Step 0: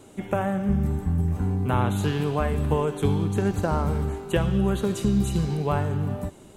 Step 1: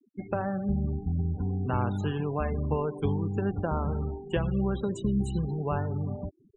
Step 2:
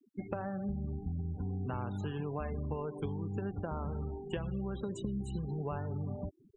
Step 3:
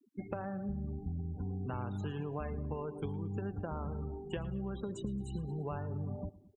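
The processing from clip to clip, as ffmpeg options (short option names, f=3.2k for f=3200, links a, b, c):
-af "afftfilt=real='re*gte(hypot(re,im),0.0282)':imag='im*gte(hypot(re,im),0.0282)':win_size=1024:overlap=0.75,volume=-5dB"
-af "acompressor=threshold=-32dB:ratio=6,volume=-1.5dB"
-af "aecho=1:1:112|224|336:0.106|0.0466|0.0205,volume=-1.5dB"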